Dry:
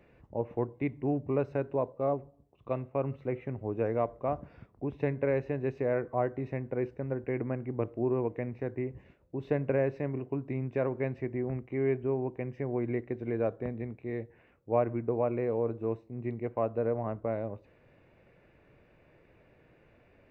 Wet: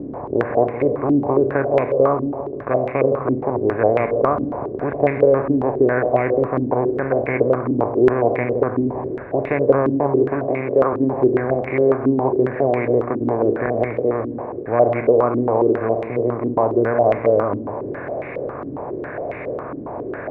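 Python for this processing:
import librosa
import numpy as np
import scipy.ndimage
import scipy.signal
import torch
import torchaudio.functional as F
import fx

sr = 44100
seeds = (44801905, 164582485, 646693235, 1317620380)

y = fx.bin_compress(x, sr, power=0.4)
y = fx.highpass(y, sr, hz=160.0, slope=12, at=(10.48, 10.93))
y = fx.echo_feedback(y, sr, ms=168, feedback_pct=59, wet_db=-11.0)
y = fx.filter_held_lowpass(y, sr, hz=7.3, low_hz=280.0, high_hz=2200.0)
y = F.gain(torch.from_numpy(y), 3.5).numpy()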